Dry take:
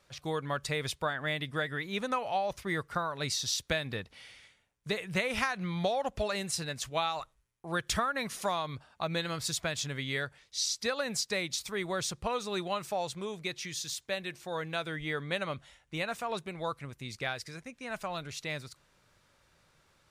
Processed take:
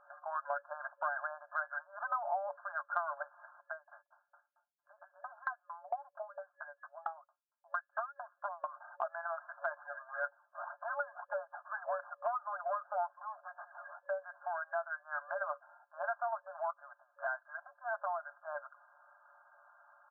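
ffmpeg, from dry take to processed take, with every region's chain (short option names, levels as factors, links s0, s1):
-filter_complex "[0:a]asettb=1/sr,asplit=3[s0][s1][s2];[s0]atrim=end=3.654[s3];[s1]atrim=start=3.65:end=8.64,asetpts=PTS-STARTPTS,afade=t=in:d=0.004:c=qsin,afade=t=out:st=4.986:d=0.004:c=qsin,lowshelf=f=240:g=-10.5,aeval=exprs='val(0)*pow(10,-39*if(lt(mod(4.4*n/s,1),2*abs(4.4)/1000),1-mod(4.4*n/s,1)/(2*abs(4.4)/1000),(mod(4.4*n/s,1)-2*abs(4.4)/1000)/(1-2*abs(4.4)/1000))/20)':c=same[s4];[s2]atrim=start=8.636[s5];[s3][s4]acrossfade=d=0.004:c1=hsin:c2=qsin[s6];[s6][s5]acrossfade=d=0.004:c1=qsin:c2=hsin,asettb=1/sr,asplit=3[s7][s8][s9];[s7]atrim=end=9.714[s10];[s8]atrim=start=9.71:end=14,asetpts=PTS-STARTPTS,afade=t=in:d=0.004:c=qsin,afade=t=out:st=4.286:d=0.004:c=qsin,aeval=exprs='if(lt(val(0),0),0.447*val(0),val(0))':c=same,aphaser=in_gain=1:out_gain=1:delay=1.8:decay=0.5:speed=1.8:type=sinusoidal[s11];[s9]atrim=start=13.996[s12];[s10][s11]acrossfade=d=0.004:c1=hsin:c2=qsin[s13];[s13][s12]acrossfade=d=0.004:c1=qsin:c2=hsin,asettb=1/sr,asplit=3[s14][s15][s16];[s14]atrim=end=16.704[s17];[s15]atrim=start=16.7:end=17.2,asetpts=PTS-STARTPTS,afade=t=in:d=0.004:c=qsin,afade=t=out:st=0.496:d=0.004:c=qsin,highpass=f=110:p=1,acompressor=threshold=0.00562:ratio=6:attack=3.2:release=140:knee=1:detection=peak[s18];[s16]atrim=start=17.196[s19];[s17][s18]acrossfade=d=0.004:c1=hsin:c2=qsin[s20];[s20][s19]acrossfade=d=0.004:c1=qsin:c2=hsin,afftfilt=real='re*between(b*sr/4096,570,1700)':imag='im*between(b*sr/4096,570,1700)':win_size=4096:overlap=0.75,aecho=1:1:5.7:0.68,acompressor=threshold=0.00501:ratio=2.5,volume=2.51"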